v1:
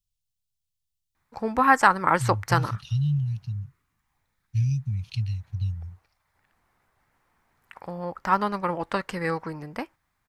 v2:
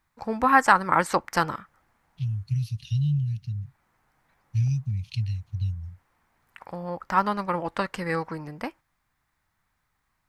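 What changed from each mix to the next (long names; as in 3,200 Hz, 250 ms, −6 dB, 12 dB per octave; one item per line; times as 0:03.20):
first voice: entry −1.15 s
master: add parametric band 410 Hz −3 dB 0.23 octaves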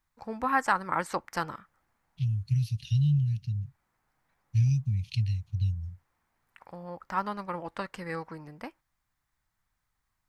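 first voice −8.0 dB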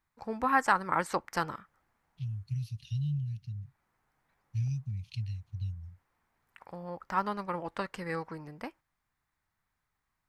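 second voice −8.0 dB
master: add parametric band 410 Hz +3 dB 0.23 octaves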